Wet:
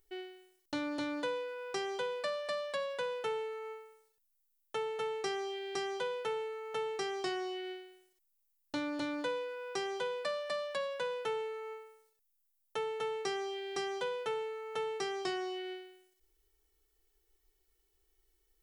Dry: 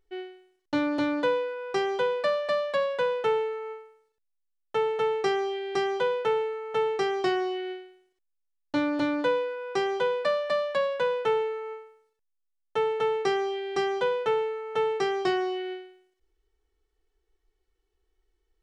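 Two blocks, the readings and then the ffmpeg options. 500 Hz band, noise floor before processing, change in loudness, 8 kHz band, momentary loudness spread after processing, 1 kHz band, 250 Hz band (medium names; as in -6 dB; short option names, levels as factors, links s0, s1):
-10.5 dB, -77 dBFS, -10.0 dB, no reading, 8 LU, -10.0 dB, -10.5 dB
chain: -af "aemphasis=mode=production:type=75fm,acompressor=threshold=0.00501:ratio=1.5,volume=0.794"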